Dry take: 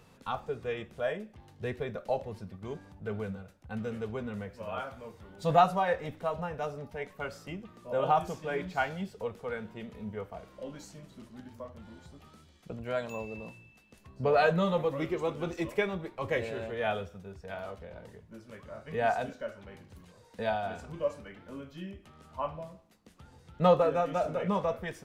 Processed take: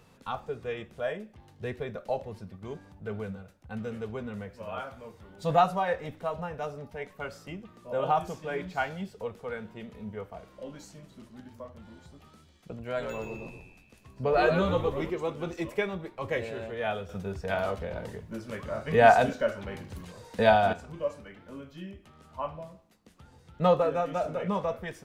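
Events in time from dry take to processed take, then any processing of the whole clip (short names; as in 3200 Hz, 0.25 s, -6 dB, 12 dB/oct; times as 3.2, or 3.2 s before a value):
12.84–15.1 frequency-shifting echo 0.124 s, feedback 38%, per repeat -89 Hz, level -6 dB
17.09–20.73 gain +10.5 dB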